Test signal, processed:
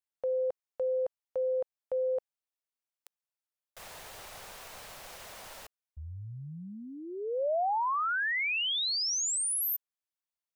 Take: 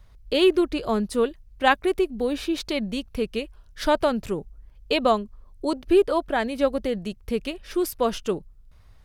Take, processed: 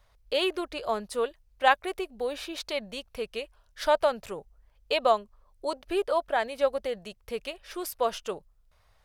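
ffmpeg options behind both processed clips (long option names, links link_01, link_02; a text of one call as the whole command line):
ffmpeg -i in.wav -af "lowshelf=frequency=420:width_type=q:width=1.5:gain=-10,volume=-3.5dB" out.wav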